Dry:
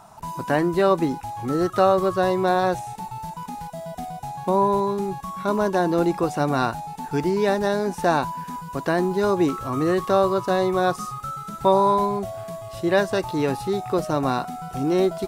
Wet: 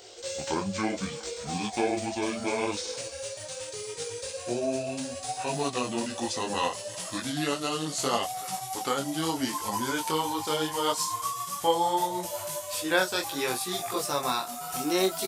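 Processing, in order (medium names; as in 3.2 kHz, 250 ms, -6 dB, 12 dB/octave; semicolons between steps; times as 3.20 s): pitch bend over the whole clip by -10.5 st ending unshifted; tilt EQ +4.5 dB/octave; band-stop 630 Hz, Q 12; in parallel at +2.5 dB: compression, threshold -33 dBFS, peak gain reduction 16.5 dB; on the sum: speakerphone echo 370 ms, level -21 dB; detune thickener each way 25 cents; trim -1.5 dB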